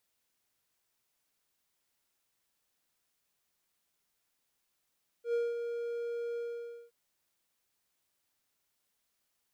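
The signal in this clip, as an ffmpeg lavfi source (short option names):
-f lavfi -i "aevalsrc='0.0562*(1-4*abs(mod(471*t+0.25,1)-0.5))':d=1.669:s=44100,afade=t=in:d=0.096,afade=t=out:st=0.096:d=0.205:silence=0.447,afade=t=out:st=1.13:d=0.539"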